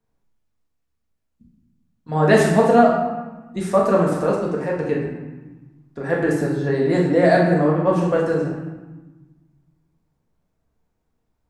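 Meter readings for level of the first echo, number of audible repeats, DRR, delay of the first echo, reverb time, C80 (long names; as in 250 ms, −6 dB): no echo audible, no echo audible, −3.0 dB, no echo audible, 1.2 s, 4.5 dB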